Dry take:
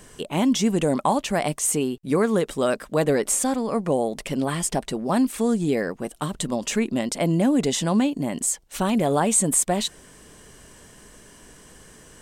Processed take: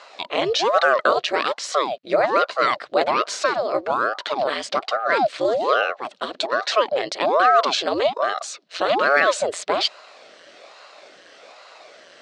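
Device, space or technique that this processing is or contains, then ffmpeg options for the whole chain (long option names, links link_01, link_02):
voice changer toy: -af "aeval=exprs='val(0)*sin(2*PI*550*n/s+550*0.85/1.2*sin(2*PI*1.2*n/s))':channel_layout=same,highpass=590,equalizer=frequency=600:width_type=q:width=4:gain=7,equalizer=frequency=900:width_type=q:width=4:gain=-9,equalizer=frequency=4200:width_type=q:width=4:gain=6,lowpass=frequency=4800:width=0.5412,lowpass=frequency=4800:width=1.3066,volume=8.5dB"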